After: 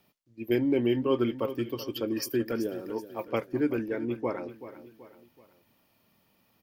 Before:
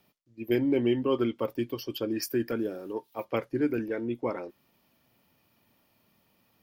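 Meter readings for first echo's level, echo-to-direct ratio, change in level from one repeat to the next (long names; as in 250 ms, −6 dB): −13.5 dB, −12.5 dB, −7.0 dB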